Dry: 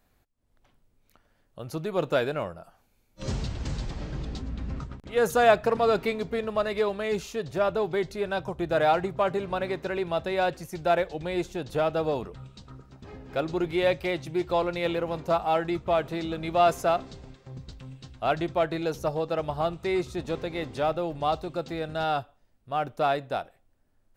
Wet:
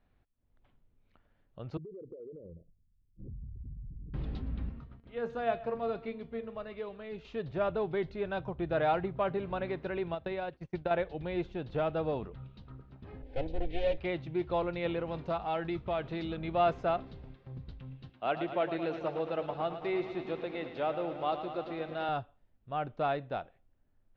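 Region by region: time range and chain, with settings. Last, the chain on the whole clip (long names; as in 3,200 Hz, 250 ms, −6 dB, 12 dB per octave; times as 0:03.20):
0:01.77–0:04.14: spectral envelope exaggerated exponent 3 + Butterworth low-pass 500 Hz 72 dB per octave + downward compressor 4 to 1, threshold −40 dBFS
0:04.69–0:07.25: tuned comb filter 230 Hz, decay 0.3 s, mix 70% + single-tap delay 128 ms −19 dB
0:10.14–0:10.91: downward expander −38 dBFS + downward compressor 5 to 1, threshold −28 dBFS + transient designer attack +6 dB, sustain −9 dB
0:13.22–0:13.98: lower of the sound and its delayed copy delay 3.9 ms + low-shelf EQ 200 Hz +9.5 dB + phaser with its sweep stopped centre 490 Hz, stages 4
0:15.00–0:16.37: downward compressor 1.5 to 1, threshold −28 dBFS + high-shelf EQ 3,700 Hz +9.5 dB
0:18.09–0:22.09: high-pass filter 230 Hz + parametric band 2,800 Hz +2.5 dB 0.3 octaves + feedback echo at a low word length 110 ms, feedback 80%, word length 8 bits, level −10 dB
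whole clip: low-pass filter 3,600 Hz 24 dB per octave; low-shelf EQ 260 Hz +5.5 dB; level −7 dB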